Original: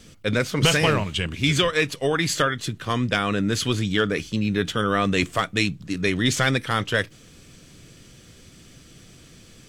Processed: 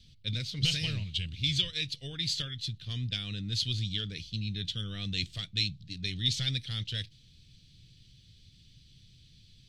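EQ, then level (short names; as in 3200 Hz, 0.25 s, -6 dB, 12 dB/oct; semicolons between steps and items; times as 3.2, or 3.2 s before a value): EQ curve 120 Hz 0 dB, 300 Hz -17 dB, 1100 Hz -29 dB, 4000 Hz +4 dB, 7100 Hz -16 dB; dynamic EQ 7100 Hz, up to +7 dB, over -45 dBFS, Q 0.72; -6.0 dB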